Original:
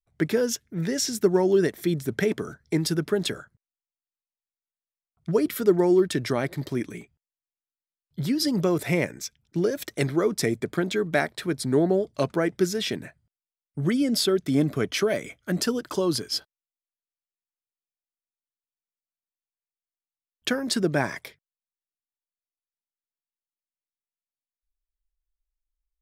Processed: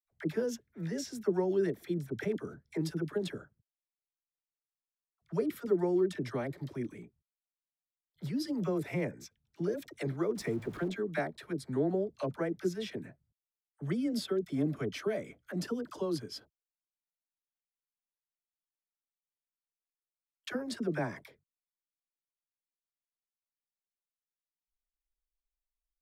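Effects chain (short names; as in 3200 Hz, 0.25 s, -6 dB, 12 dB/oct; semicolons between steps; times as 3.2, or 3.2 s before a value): 10.35–10.88 zero-crossing step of -35 dBFS; high shelf 2500 Hz -9 dB; dispersion lows, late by 51 ms, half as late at 630 Hz; gain -9 dB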